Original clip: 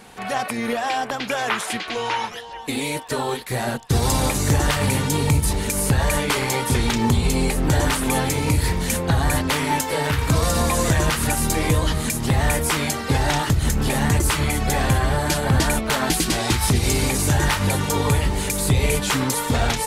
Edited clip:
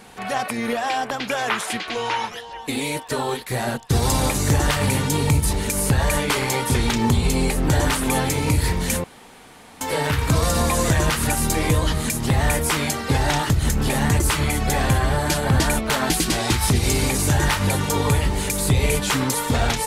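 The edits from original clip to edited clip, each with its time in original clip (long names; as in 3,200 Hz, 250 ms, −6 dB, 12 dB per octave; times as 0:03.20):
0:09.04–0:09.81: fill with room tone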